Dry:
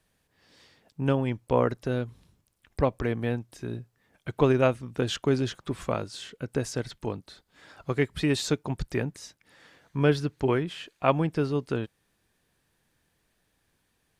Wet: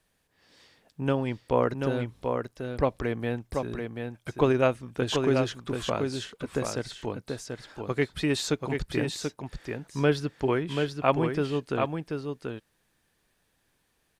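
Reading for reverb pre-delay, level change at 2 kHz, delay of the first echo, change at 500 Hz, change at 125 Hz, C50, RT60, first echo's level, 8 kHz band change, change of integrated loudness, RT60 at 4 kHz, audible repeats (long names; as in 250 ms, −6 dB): no reverb audible, +1.0 dB, 735 ms, +0.5 dB, −2.0 dB, no reverb audible, no reverb audible, −5.0 dB, +1.0 dB, −1.0 dB, no reverb audible, 1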